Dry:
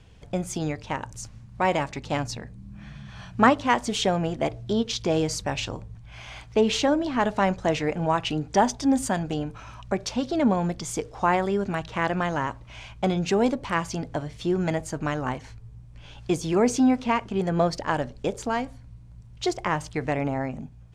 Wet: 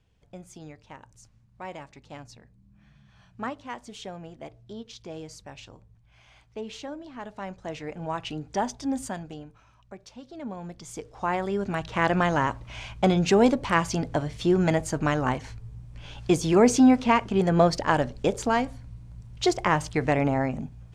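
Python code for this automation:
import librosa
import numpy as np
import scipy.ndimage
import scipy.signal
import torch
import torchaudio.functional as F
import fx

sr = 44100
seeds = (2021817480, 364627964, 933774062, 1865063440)

y = fx.gain(x, sr, db=fx.line((7.28, -15.5), (8.21, -7.0), (9.05, -7.0), (9.71, -17.5), (10.27, -17.5), (10.92, -9.0), (12.14, 3.0)))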